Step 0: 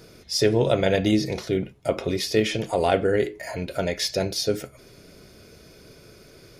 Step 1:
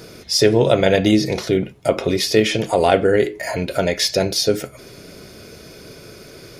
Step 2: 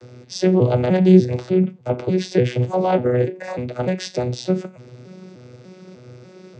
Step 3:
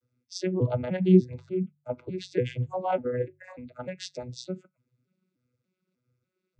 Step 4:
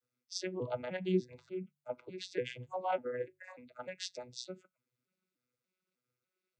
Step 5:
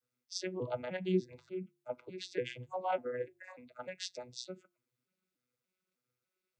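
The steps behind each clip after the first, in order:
bass shelf 70 Hz -7.5 dB; in parallel at -3 dB: compression, threshold -31 dBFS, peak gain reduction 15 dB; on the sum: trim +5 dB
vocoder on a broken chord bare fifth, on B2, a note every 297 ms
expander on every frequency bin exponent 2; de-hum 48.92 Hz, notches 3; trim -5.5 dB
high-pass 890 Hz 6 dB/octave; trim -2 dB
de-hum 351 Hz, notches 3

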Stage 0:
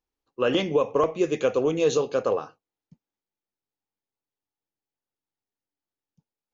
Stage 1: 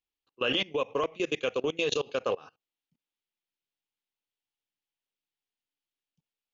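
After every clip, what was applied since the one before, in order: peaking EQ 3 kHz +14 dB 1.4 oct; level held to a coarse grid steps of 23 dB; trim -4 dB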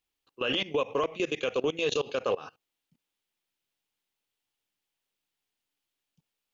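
peak limiter -26 dBFS, peak gain reduction 11.5 dB; trim +7 dB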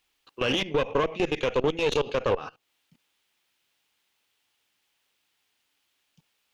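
single-diode clipper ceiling -33 dBFS; treble shelf 4.8 kHz -9 dB; tape noise reduction on one side only encoder only; trim +7 dB

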